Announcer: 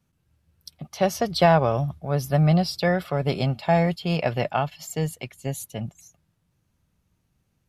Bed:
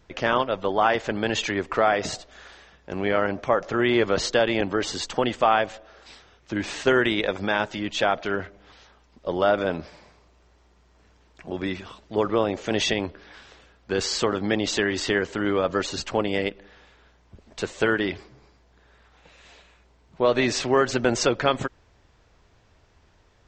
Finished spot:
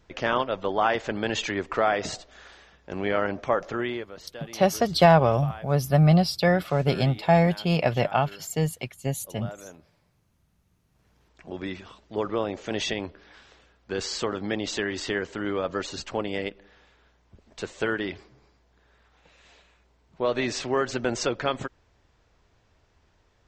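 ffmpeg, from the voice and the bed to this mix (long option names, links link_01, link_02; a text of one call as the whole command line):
ffmpeg -i stem1.wav -i stem2.wav -filter_complex "[0:a]adelay=3600,volume=1dB[link_01];[1:a]volume=12.5dB,afade=type=out:start_time=3.62:duration=0.45:silence=0.133352,afade=type=in:start_time=10.8:duration=0.48:silence=0.177828[link_02];[link_01][link_02]amix=inputs=2:normalize=0" out.wav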